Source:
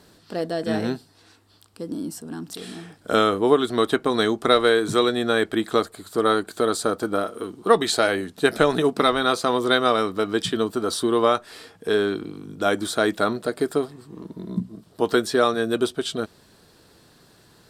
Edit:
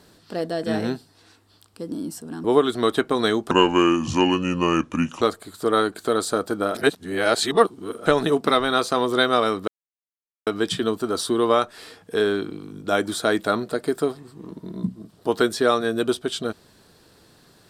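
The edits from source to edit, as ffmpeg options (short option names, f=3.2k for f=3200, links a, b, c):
-filter_complex "[0:a]asplit=7[a][b][c][d][e][f][g];[a]atrim=end=2.442[h];[b]atrim=start=3.388:end=4.464[i];[c]atrim=start=4.46:end=5.74,asetpts=PTS-STARTPTS,asetrate=33075,aresample=44100[j];[d]atrim=start=5.736:end=7.272[k];[e]atrim=start=7.268:end=8.582,asetpts=PTS-STARTPTS,areverse[l];[f]atrim=start=8.578:end=10.2,asetpts=PTS-STARTPTS,afade=t=out:st=1.618:d=0.004:c=hsin,apad=pad_dur=0.79[m];[g]atrim=start=10.2,asetpts=PTS-STARTPTS,afade=t=in:d=0.004:c=hsin[n];[h][i]acrossfade=d=0.004:c1=hsin:c2=hsin[o];[o][j]acrossfade=d=0.004:c1=hsin:c2=hsin[p];[p][k]acrossfade=d=0.004:c1=hsin:c2=hsin[q];[q][l]acrossfade=d=0.004:c1=hsin:c2=hsin[r];[m][n]concat=n=2:v=0:a=1[s];[r][s]acrossfade=d=0.004:c1=hsin:c2=hsin"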